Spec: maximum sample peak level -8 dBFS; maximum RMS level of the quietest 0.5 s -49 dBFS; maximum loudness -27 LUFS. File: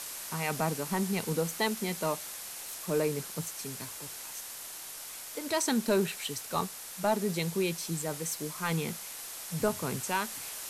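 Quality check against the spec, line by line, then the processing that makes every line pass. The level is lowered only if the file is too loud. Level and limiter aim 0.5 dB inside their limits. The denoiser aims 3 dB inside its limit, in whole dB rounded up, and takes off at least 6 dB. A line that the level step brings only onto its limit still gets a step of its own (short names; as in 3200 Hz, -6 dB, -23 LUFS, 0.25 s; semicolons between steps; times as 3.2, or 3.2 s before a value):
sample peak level -15.0 dBFS: OK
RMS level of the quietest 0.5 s -43 dBFS: fail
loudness -33.0 LUFS: OK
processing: denoiser 9 dB, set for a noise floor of -43 dBFS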